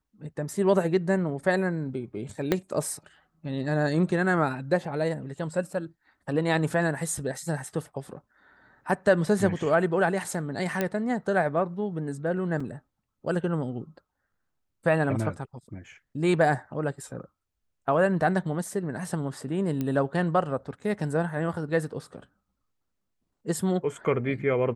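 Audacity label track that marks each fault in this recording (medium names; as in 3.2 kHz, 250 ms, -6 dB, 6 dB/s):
2.520000	2.520000	pop -10 dBFS
10.810000	10.810000	pop -12 dBFS
12.600000	12.600000	dropout 4.3 ms
19.810000	19.810000	pop -17 dBFS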